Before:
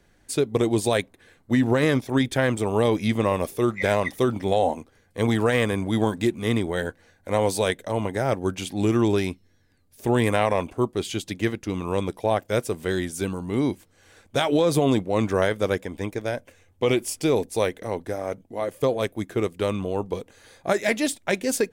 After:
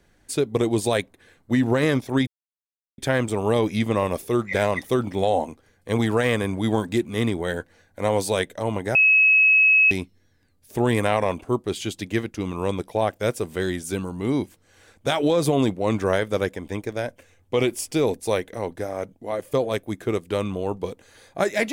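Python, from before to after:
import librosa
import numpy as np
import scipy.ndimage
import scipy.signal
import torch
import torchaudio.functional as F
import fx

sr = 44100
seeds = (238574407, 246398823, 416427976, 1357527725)

y = fx.edit(x, sr, fx.insert_silence(at_s=2.27, length_s=0.71),
    fx.bleep(start_s=8.24, length_s=0.96, hz=2570.0, db=-12.5), tone=tone)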